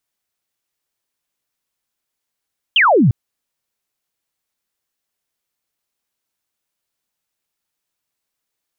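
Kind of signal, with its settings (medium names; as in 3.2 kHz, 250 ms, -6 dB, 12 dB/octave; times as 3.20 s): laser zap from 3.3 kHz, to 100 Hz, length 0.35 s sine, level -8.5 dB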